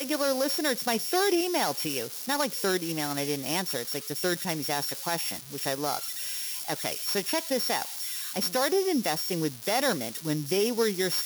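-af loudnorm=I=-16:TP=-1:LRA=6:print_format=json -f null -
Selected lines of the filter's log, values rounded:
"input_i" : "-27.7",
"input_tp" : "-13.8",
"input_lra" : "2.5",
"input_thresh" : "-37.7",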